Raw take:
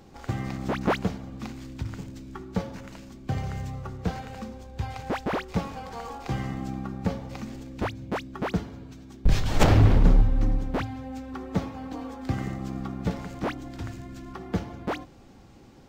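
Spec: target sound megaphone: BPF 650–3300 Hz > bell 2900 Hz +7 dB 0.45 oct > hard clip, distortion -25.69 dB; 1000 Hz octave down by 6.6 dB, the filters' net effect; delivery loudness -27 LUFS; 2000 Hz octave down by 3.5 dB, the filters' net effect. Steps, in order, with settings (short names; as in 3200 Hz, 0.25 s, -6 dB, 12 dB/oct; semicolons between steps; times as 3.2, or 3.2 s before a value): BPF 650–3300 Hz; bell 1000 Hz -6.5 dB; bell 2000 Hz -3.5 dB; bell 2900 Hz +7 dB 0.45 oct; hard clip -18 dBFS; gain +14.5 dB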